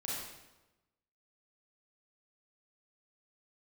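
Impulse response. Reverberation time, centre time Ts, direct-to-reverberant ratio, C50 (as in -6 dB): 1.1 s, 83 ms, -6.5 dB, -2.0 dB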